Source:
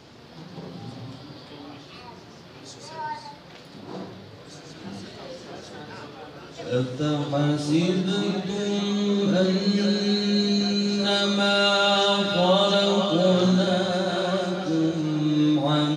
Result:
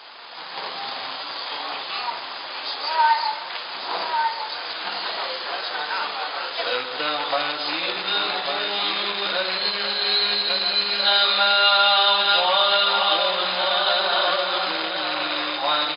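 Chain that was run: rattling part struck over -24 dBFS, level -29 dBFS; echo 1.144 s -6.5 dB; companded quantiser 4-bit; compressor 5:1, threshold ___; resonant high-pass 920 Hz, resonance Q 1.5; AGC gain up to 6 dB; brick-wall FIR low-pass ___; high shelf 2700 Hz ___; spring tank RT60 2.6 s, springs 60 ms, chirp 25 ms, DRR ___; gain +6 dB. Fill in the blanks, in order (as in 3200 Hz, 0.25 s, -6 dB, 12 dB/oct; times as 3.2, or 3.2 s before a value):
-28 dBFS, 5100 Hz, +5.5 dB, 19 dB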